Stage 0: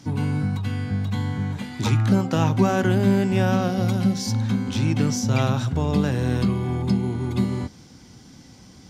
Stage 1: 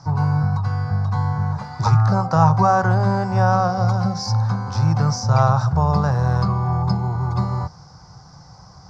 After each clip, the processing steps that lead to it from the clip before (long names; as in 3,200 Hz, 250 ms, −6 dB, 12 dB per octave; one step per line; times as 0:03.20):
drawn EQ curve 110 Hz 0 dB, 160 Hz +2 dB, 240 Hz −21 dB, 770 Hz +6 dB, 1,200 Hz +7 dB, 2,100 Hz −13 dB, 3,200 Hz −22 dB, 5,000 Hz +1 dB, 10,000 Hz −25 dB
level +5 dB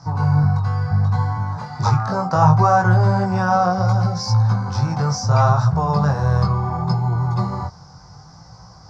chorus effect 0.7 Hz, delay 17 ms, depth 5.7 ms
level +4 dB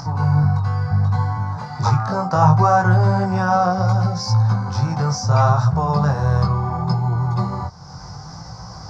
upward compression, threshold −25 dBFS